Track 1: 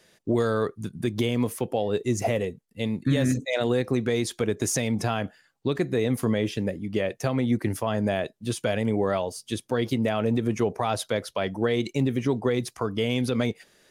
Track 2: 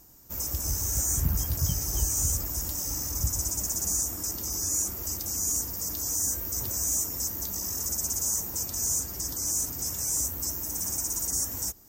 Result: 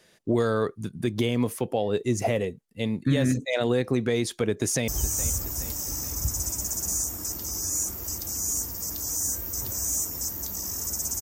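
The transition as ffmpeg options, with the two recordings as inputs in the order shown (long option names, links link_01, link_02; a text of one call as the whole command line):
ffmpeg -i cue0.wav -i cue1.wav -filter_complex "[0:a]apad=whole_dur=11.21,atrim=end=11.21,atrim=end=4.882[link_01];[1:a]atrim=start=1.868:end=8.2[link_02];[link_01][link_02]acrossfade=duration=0.004:curve1=hsin:curve2=hsin,asplit=2[link_03][link_04];[link_04]afade=type=in:start_time=4.54:duration=0.01,afade=type=out:start_time=4.88:duration=0.01,aecho=0:1:420|840|1260|1680|2100|2520:0.199526|0.119716|0.0718294|0.0430977|0.0258586|0.0155152[link_05];[link_03][link_05]amix=inputs=2:normalize=0" out.wav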